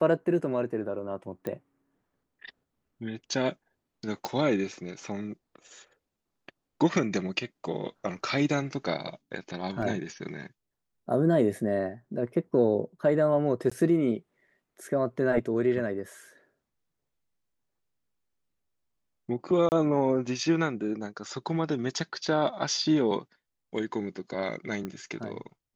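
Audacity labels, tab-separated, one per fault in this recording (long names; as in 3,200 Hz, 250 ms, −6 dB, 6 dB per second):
1.470000	1.470000	click −20 dBFS
4.250000	4.250000	click −16 dBFS
9.820000	9.820000	drop-out 4 ms
13.700000	13.710000	drop-out 15 ms
19.690000	19.720000	drop-out 29 ms
24.850000	24.850000	click −22 dBFS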